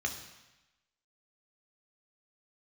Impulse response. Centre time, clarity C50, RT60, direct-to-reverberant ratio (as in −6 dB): 21 ms, 8.5 dB, 1.0 s, 3.0 dB